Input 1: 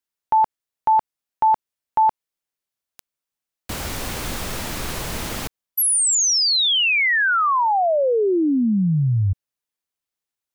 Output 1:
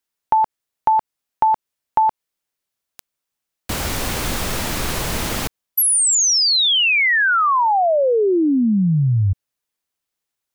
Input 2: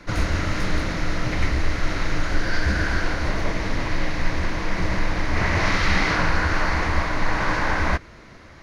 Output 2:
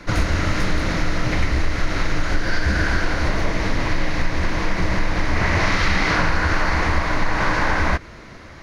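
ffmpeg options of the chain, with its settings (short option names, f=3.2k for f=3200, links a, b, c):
-af "acompressor=threshold=-20dB:ratio=3:attack=22:release=371:detection=peak,volume=5dB"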